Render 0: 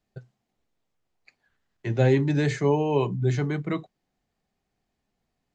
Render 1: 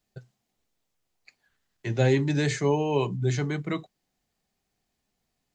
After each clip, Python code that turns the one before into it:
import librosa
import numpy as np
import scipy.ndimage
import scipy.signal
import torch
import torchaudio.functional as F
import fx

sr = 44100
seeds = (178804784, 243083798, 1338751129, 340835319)

y = fx.high_shelf(x, sr, hz=3300.0, db=10.0)
y = y * 10.0 ** (-2.0 / 20.0)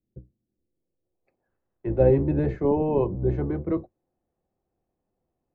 y = fx.octave_divider(x, sr, octaves=1, level_db=-2.0)
y = fx.filter_sweep_lowpass(y, sr, from_hz=270.0, to_hz=920.0, start_s=0.5, end_s=1.57, q=1.1)
y = fx.small_body(y, sr, hz=(350.0, 510.0, 2600.0), ring_ms=45, db=10)
y = y * 10.0 ** (-2.5 / 20.0)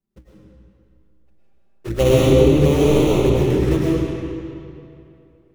y = fx.dead_time(x, sr, dead_ms=0.29)
y = fx.env_flanger(y, sr, rest_ms=5.1, full_db=-21.0)
y = fx.rev_freeverb(y, sr, rt60_s=2.6, hf_ratio=0.8, predelay_ms=70, drr_db=-6.0)
y = y * 10.0 ** (3.0 / 20.0)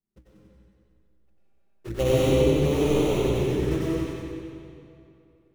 y = fx.echo_thinned(x, sr, ms=92, feedback_pct=64, hz=530.0, wet_db=-3.5)
y = y * 10.0 ** (-8.0 / 20.0)